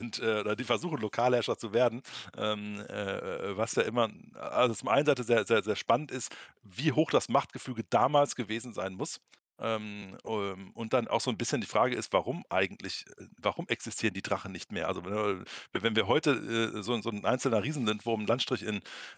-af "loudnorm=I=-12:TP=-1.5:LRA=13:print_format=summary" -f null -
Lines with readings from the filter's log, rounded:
Input Integrated:    -31.1 LUFS
Input True Peak:     -12.0 dBTP
Input LRA:             3.0 LU
Input Threshold:     -41.3 LUFS